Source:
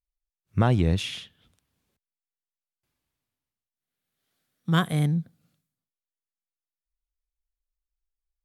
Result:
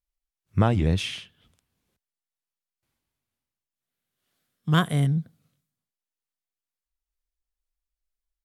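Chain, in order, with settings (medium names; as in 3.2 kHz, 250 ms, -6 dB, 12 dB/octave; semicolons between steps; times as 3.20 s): sawtooth pitch modulation -1.5 st, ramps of 431 ms; trim +1.5 dB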